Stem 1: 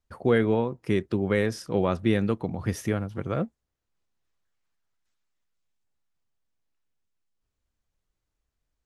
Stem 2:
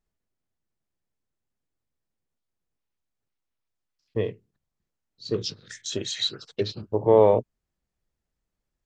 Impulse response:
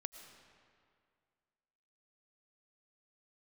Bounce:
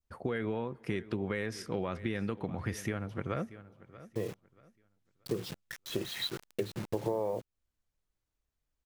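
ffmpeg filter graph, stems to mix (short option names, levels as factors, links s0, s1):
-filter_complex "[0:a]alimiter=limit=0.188:level=0:latency=1,adynamicequalizer=threshold=0.00447:dfrequency=2000:dqfactor=0.84:tfrequency=2000:tqfactor=0.84:attack=5:release=100:ratio=0.375:range=3:mode=boostabove:tftype=bell,volume=0.562,asplit=4[s0][s1][s2][s3];[s1]volume=0.112[s4];[s2]volume=0.106[s5];[1:a]lowpass=2300,aecho=1:1:5.8:0.31,acrusher=bits=6:mix=0:aa=0.000001,volume=1[s6];[s3]apad=whole_len=390700[s7];[s6][s7]sidechaincompress=threshold=0.0112:ratio=8:attack=16:release=1350[s8];[2:a]atrim=start_sample=2205[s9];[s4][s9]afir=irnorm=-1:irlink=0[s10];[s5]aecho=0:1:632|1264|1896|2528:1|0.29|0.0841|0.0244[s11];[s0][s8][s10][s11]amix=inputs=4:normalize=0,acompressor=threshold=0.0355:ratio=12"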